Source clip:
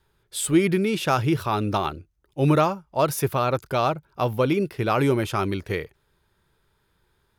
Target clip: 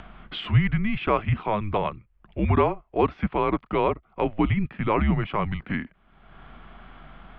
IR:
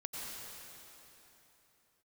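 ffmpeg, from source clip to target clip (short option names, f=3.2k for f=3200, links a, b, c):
-af "aeval=exprs='val(0)+0.00178*(sin(2*PI*50*n/s)+sin(2*PI*2*50*n/s)/2+sin(2*PI*3*50*n/s)/3+sin(2*PI*4*50*n/s)/4+sin(2*PI*5*50*n/s)/5)':c=same,highpass=f=210:t=q:w=0.5412,highpass=f=210:t=q:w=1.307,lowpass=f=3.1k:t=q:w=0.5176,lowpass=f=3.1k:t=q:w=0.7071,lowpass=f=3.1k:t=q:w=1.932,afreqshift=-210,acompressor=mode=upward:threshold=-25dB:ratio=2.5"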